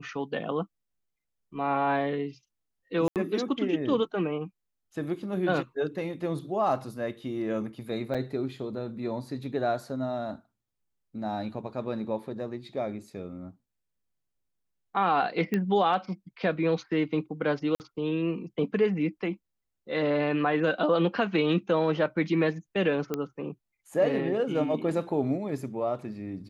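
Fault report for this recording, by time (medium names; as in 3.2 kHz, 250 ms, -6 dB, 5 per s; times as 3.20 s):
3.08–3.16 s: dropout 78 ms
8.14–8.15 s: dropout 6.1 ms
15.54 s: pop -16 dBFS
17.75–17.80 s: dropout 49 ms
23.14 s: pop -16 dBFS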